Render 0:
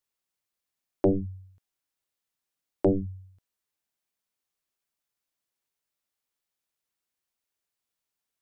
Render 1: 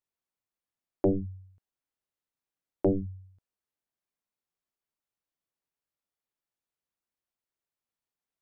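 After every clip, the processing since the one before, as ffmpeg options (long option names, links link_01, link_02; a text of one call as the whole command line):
ffmpeg -i in.wav -af "highshelf=frequency=2000:gain=-9.5,volume=-2dB" out.wav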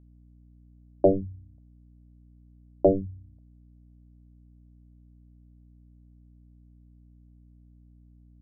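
ffmpeg -i in.wav -af "lowpass=frequency=640:width_type=q:width=4.9,aeval=exprs='val(0)+0.00224*(sin(2*PI*60*n/s)+sin(2*PI*2*60*n/s)/2+sin(2*PI*3*60*n/s)/3+sin(2*PI*4*60*n/s)/4+sin(2*PI*5*60*n/s)/5)':channel_layout=same" out.wav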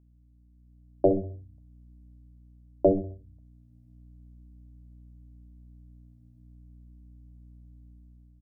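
ffmpeg -i in.wav -af "aecho=1:1:65|130|195|260:0.188|0.081|0.0348|0.015,dynaudnorm=framelen=120:gausssize=11:maxgain=9dB,flanger=delay=0.9:depth=7.9:regen=-75:speed=0.4:shape=triangular,volume=-2dB" out.wav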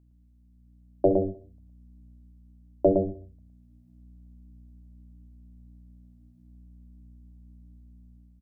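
ffmpeg -i in.wav -af "aecho=1:1:112:0.531" out.wav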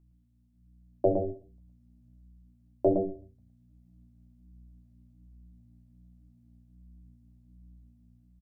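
ffmpeg -i in.wav -filter_complex "[0:a]flanger=delay=5.7:depth=3.4:regen=-35:speed=1.3:shape=sinusoidal,asplit=2[link_01][link_02];[link_02]adelay=18,volume=-8.5dB[link_03];[link_01][link_03]amix=inputs=2:normalize=0" out.wav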